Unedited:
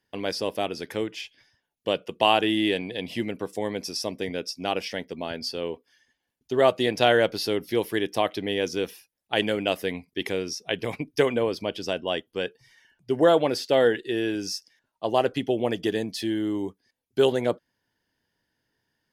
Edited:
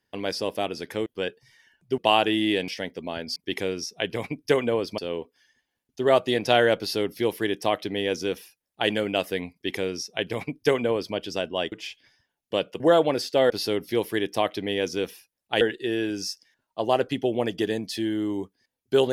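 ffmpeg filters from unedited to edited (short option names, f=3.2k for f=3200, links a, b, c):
-filter_complex "[0:a]asplit=10[a][b][c][d][e][f][g][h][i][j];[a]atrim=end=1.062[k];[b]atrim=start=12.238:end=13.162[l];[c]atrim=start=2.138:end=2.842[m];[d]atrim=start=4.818:end=5.502[n];[e]atrim=start=10.048:end=11.672[o];[f]atrim=start=5.498:end=12.242[p];[g]atrim=start=1.058:end=2.142[q];[h]atrim=start=13.158:end=13.862[r];[i]atrim=start=7.298:end=9.412[s];[j]atrim=start=13.858[t];[k][l]acrossfade=d=0.004:c1=hsin:c2=hsin[u];[u][m]acrossfade=d=0.004:c1=hsin:c2=hsin[v];[v][n]acrossfade=d=0.004:c1=hsin:c2=hsin[w];[w][o]acrossfade=d=0.004:c1=hsin:c2=hsin[x];[x][p]acrossfade=d=0.004:c1=hsin:c2=hsin[y];[y][q]acrossfade=d=0.004:c1=hsin:c2=hsin[z];[z][r]acrossfade=d=0.004:c1=hsin:c2=hsin[aa];[aa][s]acrossfade=d=0.004:c1=hsin:c2=hsin[ab];[ab][t]acrossfade=d=0.004:c1=hsin:c2=hsin"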